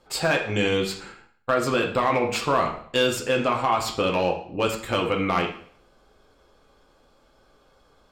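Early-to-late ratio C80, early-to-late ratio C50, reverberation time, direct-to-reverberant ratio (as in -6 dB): 11.5 dB, 7.5 dB, 0.55 s, 1.5 dB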